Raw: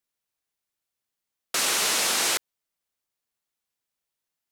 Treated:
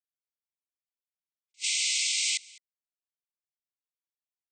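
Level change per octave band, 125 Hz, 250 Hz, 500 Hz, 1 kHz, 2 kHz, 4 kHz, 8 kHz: under -40 dB, under -40 dB, under -40 dB, under -40 dB, -5.5 dB, -2.5 dB, -3.5 dB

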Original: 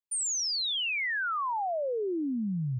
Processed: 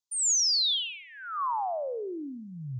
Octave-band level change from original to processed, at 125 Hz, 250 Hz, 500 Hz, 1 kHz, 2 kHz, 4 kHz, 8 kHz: n/a, -7.5 dB, -2.5 dB, +0.5 dB, -12.0 dB, +4.0 dB, +5.0 dB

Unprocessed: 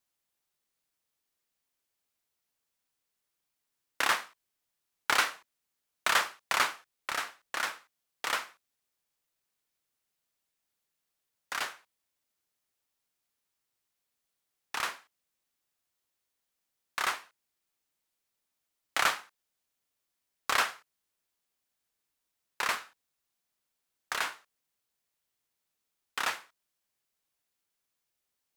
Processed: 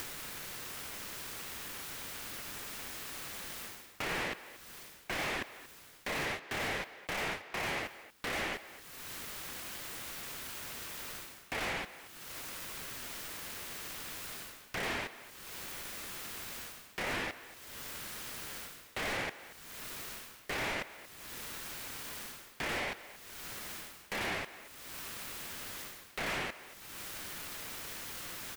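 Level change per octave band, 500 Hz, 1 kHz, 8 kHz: +3.5, -6.5, -0.5 dB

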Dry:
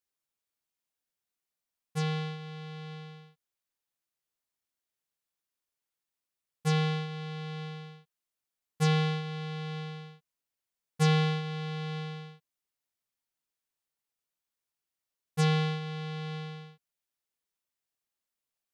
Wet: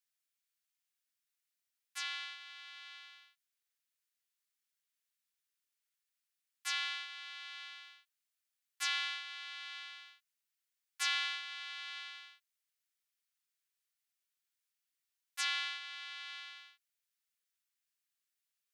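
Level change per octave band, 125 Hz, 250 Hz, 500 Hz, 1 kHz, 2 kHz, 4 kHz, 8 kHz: under -40 dB, n/a, under -35 dB, -9.0 dB, +0.5 dB, +1.0 dB, +1.0 dB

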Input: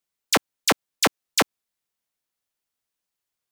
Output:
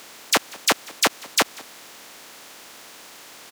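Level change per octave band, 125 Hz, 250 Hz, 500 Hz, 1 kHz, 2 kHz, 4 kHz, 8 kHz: -5.5, -3.0, -0.5, +1.0, +1.5, +2.0, +2.0 dB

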